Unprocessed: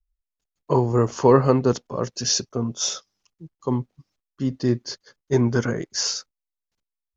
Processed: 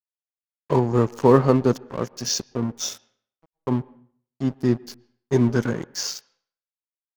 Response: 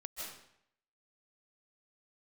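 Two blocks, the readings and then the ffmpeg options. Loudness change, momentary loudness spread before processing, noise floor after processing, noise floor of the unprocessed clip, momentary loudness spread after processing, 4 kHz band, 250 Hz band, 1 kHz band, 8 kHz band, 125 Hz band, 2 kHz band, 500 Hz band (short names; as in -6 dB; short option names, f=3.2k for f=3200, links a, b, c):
0.0 dB, 14 LU, under -85 dBFS, under -85 dBFS, 13 LU, -4.0 dB, +1.5 dB, -1.0 dB, n/a, -0.5 dB, -1.0 dB, -0.5 dB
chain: -filter_complex "[0:a]adynamicequalizer=threshold=0.0224:dfrequency=210:dqfactor=1.1:tfrequency=210:tqfactor=1.1:attack=5:release=100:ratio=0.375:range=2:mode=boostabove:tftype=bell,aeval=exprs='sgn(val(0))*max(abs(val(0))-0.0237,0)':c=same,asplit=2[a][b];[1:a]atrim=start_sample=2205,asetrate=57330,aresample=44100,lowpass=2.8k[c];[b][c]afir=irnorm=-1:irlink=0,volume=-16.5dB[d];[a][d]amix=inputs=2:normalize=0,volume=-1dB"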